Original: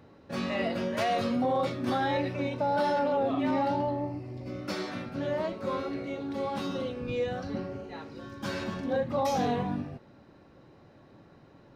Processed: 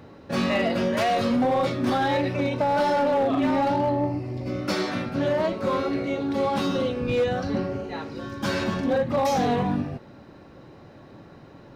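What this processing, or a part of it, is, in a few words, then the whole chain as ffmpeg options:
limiter into clipper: -af "alimiter=limit=-22dB:level=0:latency=1:release=267,asoftclip=type=hard:threshold=-26dB,volume=8.5dB"

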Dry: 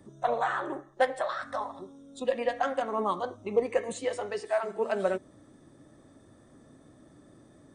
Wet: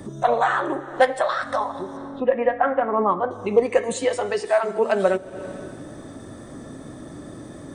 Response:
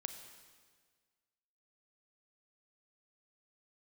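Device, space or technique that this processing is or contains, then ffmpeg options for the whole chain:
ducked reverb: -filter_complex "[0:a]asettb=1/sr,asplit=3[link_01][link_02][link_03];[link_01]atrim=end=1.974[link_04];[link_02]atrim=start=1.97:end=3.31,asetpts=PTS-STARTPTS,afade=type=in:duration=0.004:curve=qsin,afade=type=out:start_time=1.336:duration=0.004:curve=qsin,lowpass=frequency=2100:width=0.5412,lowpass=frequency=2100:width=1.3066[link_05];[link_03]atrim=start=3.306[link_06];[link_04][link_05]acrossfade=duration=0.004:curve1=hsin:curve2=qsin[link_07];[link_07][link_06]acrossfade=duration=0.004:curve1=qsin:curve2=hsin,asplit=3[link_08][link_09][link_10];[1:a]atrim=start_sample=2205[link_11];[link_09][link_11]afir=irnorm=-1:irlink=0[link_12];[link_10]apad=whole_len=341469[link_13];[link_12][link_13]sidechaincompress=threshold=-47dB:ratio=12:attack=8.7:release=225,volume=9dB[link_14];[link_08][link_14]amix=inputs=2:normalize=0,volume=7.5dB"

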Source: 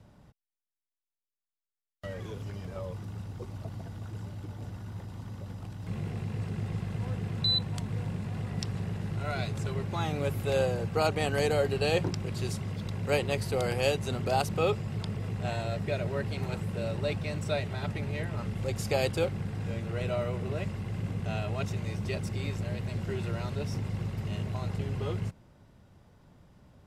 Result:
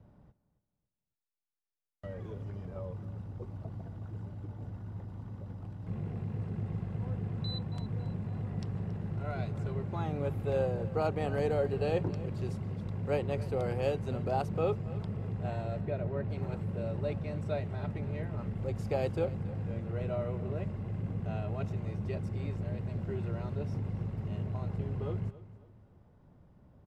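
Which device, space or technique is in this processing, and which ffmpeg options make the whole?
through cloth: -filter_complex "[0:a]asettb=1/sr,asplit=3[link_01][link_02][link_03];[link_01]atrim=end=15.814[link_04];[link_02]atrim=start=15.81:end=16.3,asetpts=PTS-STARTPTS,afade=type=in:duration=0.004:curve=qsin,afade=type=out:start_time=0.486:duration=0.004:curve=qsin,lowpass=frequency=2600:poles=1[link_05];[link_03]atrim=start=16.296[link_06];[link_04][link_05]acrossfade=duration=0.004:curve1=hsin:curve2=qsin[link_07];[link_07][link_06]acrossfade=duration=0.004:curve1=qsin:curve2=hsin,highshelf=frequency=2100:gain=-17.5,aecho=1:1:276|552|828:0.141|0.048|0.0163,volume=-2dB"

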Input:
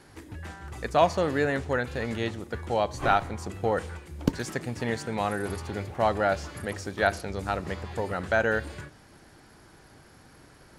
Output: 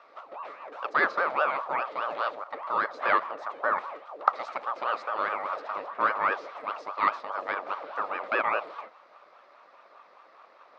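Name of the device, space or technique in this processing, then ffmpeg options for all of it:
voice changer toy: -af "aeval=exprs='val(0)*sin(2*PI*710*n/s+710*0.5/4.9*sin(2*PI*4.9*n/s))':channel_layout=same,highpass=510,equalizer=frequency=580:width_type=q:width=4:gain=7,equalizer=frequency=1200:width_type=q:width=4:gain=10,equalizer=frequency=3000:width_type=q:width=4:gain=-4,lowpass=frequency=4100:width=0.5412,lowpass=frequency=4100:width=1.3066,volume=-1dB"

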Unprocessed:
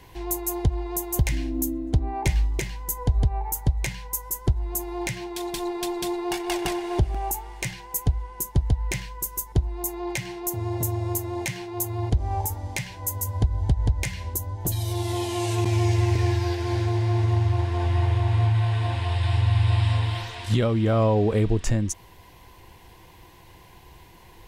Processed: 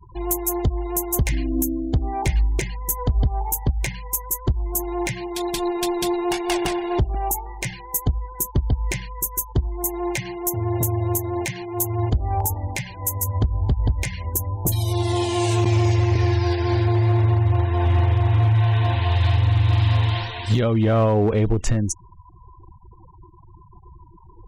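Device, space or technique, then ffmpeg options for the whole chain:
limiter into clipper: -af "afftfilt=real='re*gte(hypot(re,im),0.0112)':imag='im*gte(hypot(re,im),0.0112)':win_size=1024:overlap=0.75,alimiter=limit=-15dB:level=0:latency=1:release=360,asoftclip=type=hard:threshold=-18dB,volume=5.5dB"

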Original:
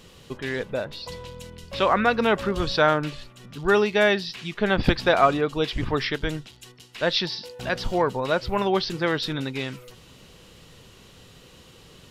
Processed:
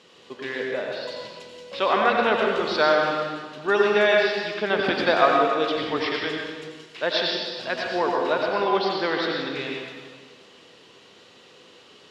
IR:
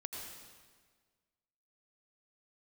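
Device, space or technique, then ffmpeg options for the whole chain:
supermarket ceiling speaker: -filter_complex "[0:a]asettb=1/sr,asplit=3[link_01][link_02][link_03];[link_01]atrim=end=8.334[link_04];[link_02]atrim=start=8.33:end=9.5,asetpts=PTS-STARTPTS,afade=type=in:duration=0.004:curve=qsin,afade=type=out:start_time=1.166:duration=0.004:curve=qsin,lowpass=5400[link_05];[link_03]atrim=start=9.496[link_06];[link_04][link_05]acrossfade=duration=0.004:curve1=hsin:curve2=qsin[link_07];[link_07][link_06]acrossfade=duration=0.004:curve1=qsin:curve2=hsin,highpass=310,lowpass=5400[link_08];[1:a]atrim=start_sample=2205[link_09];[link_08][link_09]afir=irnorm=-1:irlink=0,volume=3dB"

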